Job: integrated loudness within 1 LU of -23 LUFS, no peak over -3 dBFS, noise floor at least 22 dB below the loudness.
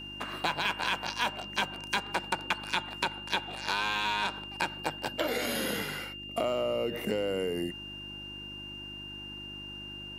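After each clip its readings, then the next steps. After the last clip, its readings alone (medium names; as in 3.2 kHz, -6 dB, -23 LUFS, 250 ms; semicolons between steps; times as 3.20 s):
hum 50 Hz; highest harmonic 350 Hz; hum level -47 dBFS; steady tone 2.8 kHz; tone level -41 dBFS; loudness -32.5 LUFS; peak level -13.5 dBFS; loudness target -23.0 LUFS
-> de-hum 50 Hz, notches 7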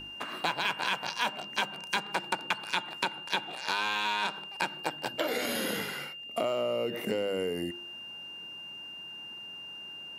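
hum not found; steady tone 2.8 kHz; tone level -41 dBFS
-> band-stop 2.8 kHz, Q 30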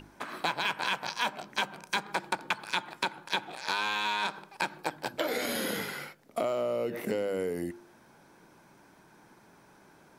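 steady tone not found; loudness -32.5 LUFS; peak level -14.0 dBFS; loudness target -23.0 LUFS
-> trim +9.5 dB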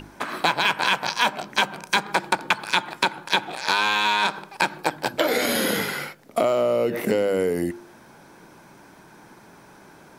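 loudness -23.0 LUFS; peak level -4.5 dBFS; noise floor -50 dBFS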